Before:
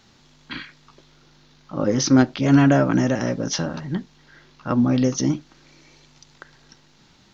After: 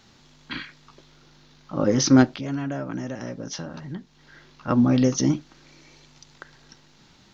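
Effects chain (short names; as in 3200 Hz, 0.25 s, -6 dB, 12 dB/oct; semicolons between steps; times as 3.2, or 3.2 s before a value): 2.26–4.68 compressor 2:1, threshold -38 dBFS, peak gain reduction 15 dB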